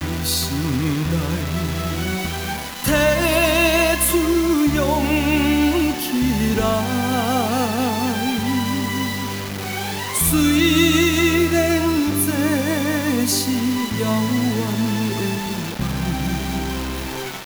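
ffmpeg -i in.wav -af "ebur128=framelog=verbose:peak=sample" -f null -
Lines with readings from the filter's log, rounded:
Integrated loudness:
  I:         -19.3 LUFS
  Threshold: -29.3 LUFS
Loudness range:
  LRA:         4.5 LU
  Threshold: -38.9 LUFS
  LRA low:   -21.5 LUFS
  LRA high:  -17.0 LUFS
Sample peak:
  Peak:       -4.4 dBFS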